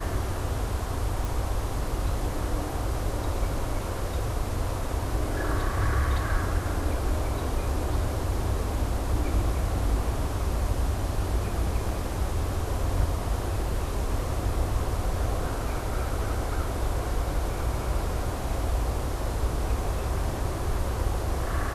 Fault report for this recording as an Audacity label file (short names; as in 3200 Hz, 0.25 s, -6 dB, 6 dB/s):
1.250000	1.250000	pop